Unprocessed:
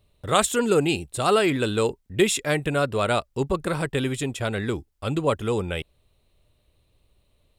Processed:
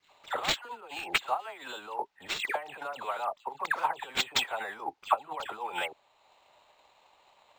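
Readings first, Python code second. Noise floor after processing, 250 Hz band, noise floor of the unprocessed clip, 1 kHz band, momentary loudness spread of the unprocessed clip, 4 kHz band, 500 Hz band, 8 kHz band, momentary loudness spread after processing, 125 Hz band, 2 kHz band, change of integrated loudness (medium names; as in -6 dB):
-67 dBFS, -24.5 dB, -67 dBFS, -3.5 dB, 8 LU, -3.0 dB, -16.5 dB, -12.0 dB, 10 LU, -29.0 dB, -4.0 dB, -9.0 dB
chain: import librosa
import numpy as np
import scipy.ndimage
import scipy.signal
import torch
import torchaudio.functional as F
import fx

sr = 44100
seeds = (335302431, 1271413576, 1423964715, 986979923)

y = fx.over_compress(x, sr, threshold_db=-34.0, ratio=-1.0)
y = fx.highpass_res(y, sr, hz=850.0, q=4.9)
y = fx.dispersion(y, sr, late='lows', ms=111.0, hz=2100.0)
y = fx.transient(y, sr, attack_db=6, sustain_db=-4)
y = np.interp(np.arange(len(y)), np.arange(len(y))[::4], y[::4])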